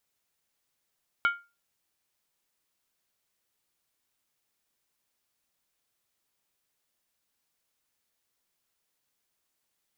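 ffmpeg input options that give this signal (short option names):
-f lavfi -i "aevalsrc='0.126*pow(10,-3*t/0.28)*sin(2*PI*1400*t)+0.0531*pow(10,-3*t/0.222)*sin(2*PI*2231.6*t)+0.0224*pow(10,-3*t/0.192)*sin(2*PI*2990.4*t)+0.00944*pow(10,-3*t/0.185)*sin(2*PI*3214.4*t)+0.00398*pow(10,-3*t/0.172)*sin(2*PI*3714.2*t)':d=0.63:s=44100"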